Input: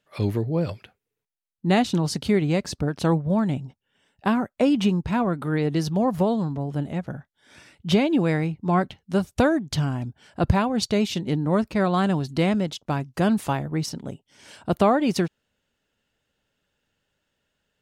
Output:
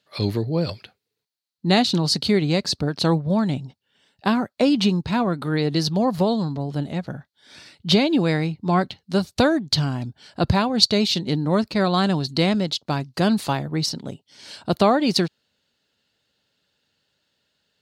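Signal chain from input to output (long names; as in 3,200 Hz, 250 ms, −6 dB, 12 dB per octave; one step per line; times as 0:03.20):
high-pass filter 83 Hz
parametric band 4,300 Hz +14 dB 0.54 octaves
level +1.5 dB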